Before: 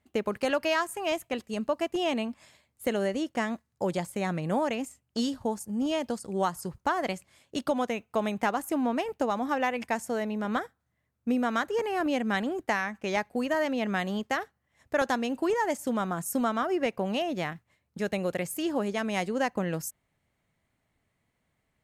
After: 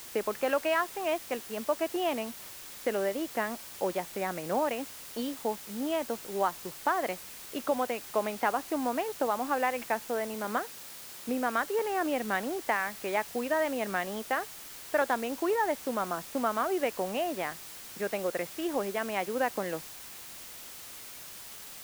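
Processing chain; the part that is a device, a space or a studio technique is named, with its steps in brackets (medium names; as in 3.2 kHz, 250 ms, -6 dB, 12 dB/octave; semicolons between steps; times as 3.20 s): wax cylinder (band-pass 330–2400 Hz; wow and flutter; white noise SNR 13 dB); 10.34–11.29 s: high-pass 90 Hz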